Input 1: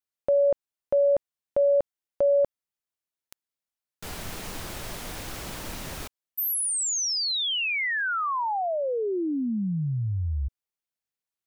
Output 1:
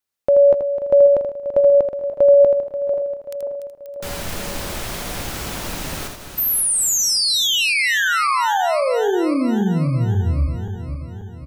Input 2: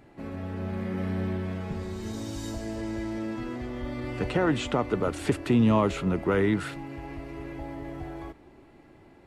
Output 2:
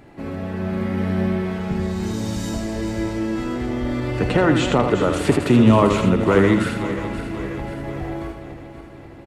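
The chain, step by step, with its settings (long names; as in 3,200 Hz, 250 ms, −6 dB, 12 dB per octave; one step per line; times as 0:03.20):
feedback delay that plays each chunk backwards 267 ms, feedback 71%, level −10.5 dB
single-tap delay 81 ms −7 dB
level +7.5 dB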